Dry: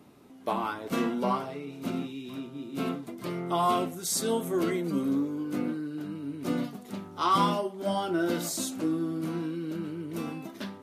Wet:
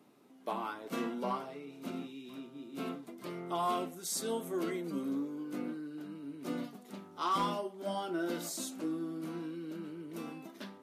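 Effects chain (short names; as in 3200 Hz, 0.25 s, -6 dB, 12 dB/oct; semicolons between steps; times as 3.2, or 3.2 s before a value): HPF 190 Hz 12 dB/oct; overloaded stage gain 18.5 dB; gain -7 dB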